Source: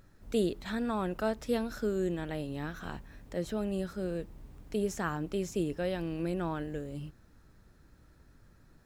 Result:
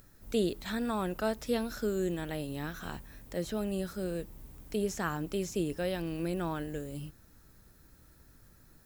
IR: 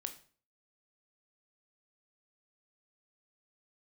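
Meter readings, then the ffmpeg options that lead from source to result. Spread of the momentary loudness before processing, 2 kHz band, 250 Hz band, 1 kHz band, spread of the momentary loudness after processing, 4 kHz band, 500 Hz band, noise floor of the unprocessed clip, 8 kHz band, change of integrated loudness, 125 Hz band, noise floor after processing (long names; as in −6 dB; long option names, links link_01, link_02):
11 LU, +0.5 dB, −0.5 dB, 0.0 dB, 10 LU, +3.0 dB, −0.5 dB, −61 dBFS, +3.5 dB, 0.0 dB, −0.5 dB, −60 dBFS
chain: -filter_complex "[0:a]aemphasis=mode=production:type=50fm,acrossover=split=6100[link_01][link_02];[link_02]acompressor=threshold=-49dB:ratio=4:attack=1:release=60[link_03];[link_01][link_03]amix=inputs=2:normalize=0"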